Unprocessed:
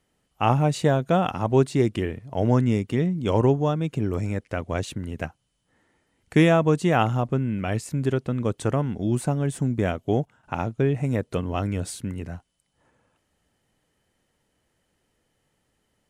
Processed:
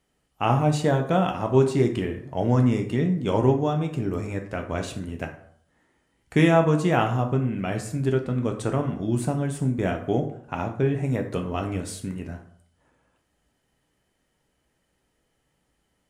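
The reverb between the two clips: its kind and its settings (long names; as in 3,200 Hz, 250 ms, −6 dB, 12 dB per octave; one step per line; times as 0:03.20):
dense smooth reverb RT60 0.61 s, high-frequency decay 0.6×, DRR 3 dB
level −2 dB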